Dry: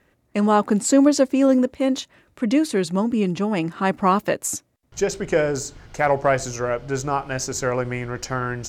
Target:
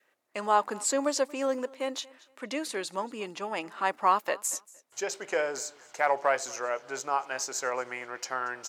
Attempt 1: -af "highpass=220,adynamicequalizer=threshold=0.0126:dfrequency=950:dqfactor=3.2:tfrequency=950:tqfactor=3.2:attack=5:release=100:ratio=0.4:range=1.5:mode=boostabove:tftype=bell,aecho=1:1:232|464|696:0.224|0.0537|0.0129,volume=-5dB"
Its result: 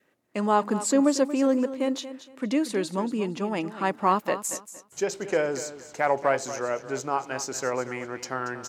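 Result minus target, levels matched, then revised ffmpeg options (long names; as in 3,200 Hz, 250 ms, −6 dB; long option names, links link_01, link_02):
250 Hz band +9.0 dB; echo-to-direct +9.5 dB
-af "highpass=600,adynamicequalizer=threshold=0.0126:dfrequency=950:dqfactor=3.2:tfrequency=950:tqfactor=3.2:attack=5:release=100:ratio=0.4:range=1.5:mode=boostabove:tftype=bell,aecho=1:1:232|464:0.075|0.018,volume=-5dB"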